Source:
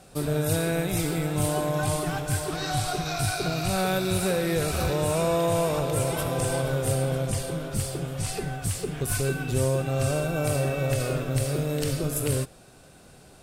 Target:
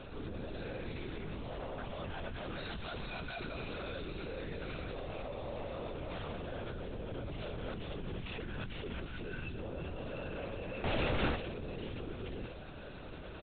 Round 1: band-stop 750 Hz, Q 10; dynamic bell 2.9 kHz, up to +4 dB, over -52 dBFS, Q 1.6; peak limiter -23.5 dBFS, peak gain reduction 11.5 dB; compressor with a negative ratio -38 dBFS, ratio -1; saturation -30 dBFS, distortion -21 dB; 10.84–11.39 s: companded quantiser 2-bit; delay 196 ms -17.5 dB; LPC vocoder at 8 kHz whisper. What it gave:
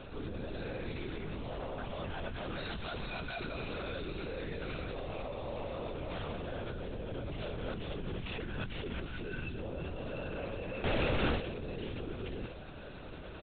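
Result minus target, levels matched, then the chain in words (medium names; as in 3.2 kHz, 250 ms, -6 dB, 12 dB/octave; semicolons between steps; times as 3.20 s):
saturation: distortion -7 dB
band-stop 750 Hz, Q 10; dynamic bell 2.9 kHz, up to +4 dB, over -52 dBFS, Q 1.6; peak limiter -23.5 dBFS, peak gain reduction 11.5 dB; compressor with a negative ratio -38 dBFS, ratio -1; saturation -36 dBFS, distortion -13 dB; 10.84–11.39 s: companded quantiser 2-bit; delay 196 ms -17.5 dB; LPC vocoder at 8 kHz whisper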